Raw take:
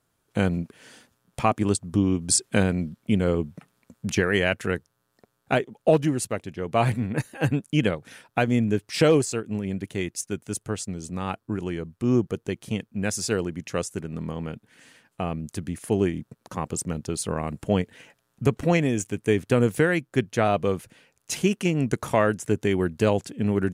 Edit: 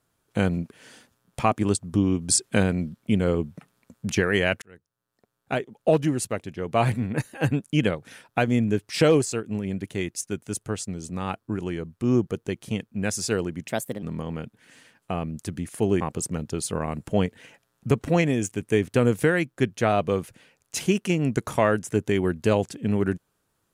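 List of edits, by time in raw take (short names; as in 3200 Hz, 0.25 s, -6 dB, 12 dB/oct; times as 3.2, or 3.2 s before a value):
4.62–6.1 fade in
13.68–14.12 speed 128%
16.1–16.56 cut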